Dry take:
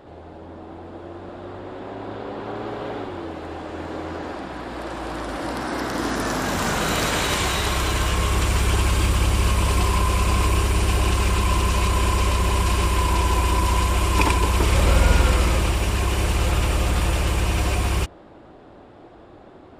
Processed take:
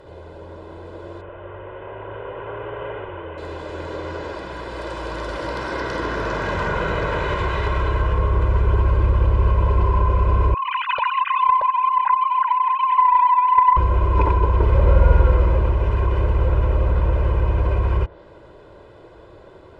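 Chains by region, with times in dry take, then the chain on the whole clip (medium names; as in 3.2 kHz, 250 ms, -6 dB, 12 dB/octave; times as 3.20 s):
1.21–3.38 s: elliptic low-pass 3 kHz + peaking EQ 240 Hz -14 dB 0.57 oct
10.54–13.77 s: formants replaced by sine waves + loudspeaker Doppler distortion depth 0.41 ms
whole clip: band-stop 860 Hz, Q 27; low-pass that closes with the level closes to 1.1 kHz, closed at -17 dBFS; comb 2 ms, depth 66%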